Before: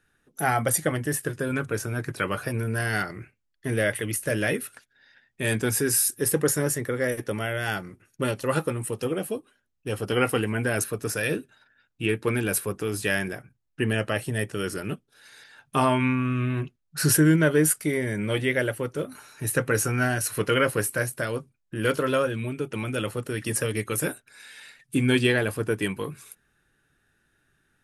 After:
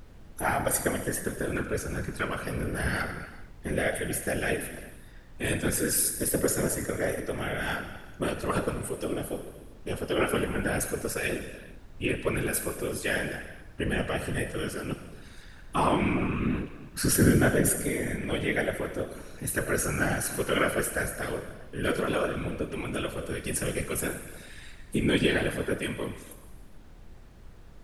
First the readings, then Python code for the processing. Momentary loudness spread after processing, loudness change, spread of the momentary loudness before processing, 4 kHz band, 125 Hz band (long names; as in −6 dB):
14 LU, −3.0 dB, 12 LU, −3.0 dB, −5.0 dB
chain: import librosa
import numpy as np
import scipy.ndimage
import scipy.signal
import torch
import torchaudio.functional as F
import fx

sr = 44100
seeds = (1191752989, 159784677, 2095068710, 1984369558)

y = fx.rev_gated(x, sr, seeds[0], gate_ms=470, shape='falling', drr_db=6.0)
y = fx.whisperise(y, sr, seeds[1])
y = fx.dmg_noise_colour(y, sr, seeds[2], colour='brown', level_db=-42.0)
y = y * librosa.db_to_amplitude(-4.0)